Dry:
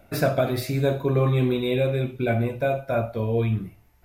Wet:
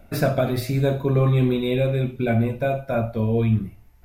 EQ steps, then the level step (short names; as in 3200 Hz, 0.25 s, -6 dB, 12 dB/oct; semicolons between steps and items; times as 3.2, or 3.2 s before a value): low shelf 86 Hz +11 dB; bell 220 Hz +5.5 dB 0.26 oct; notches 60/120 Hz; 0.0 dB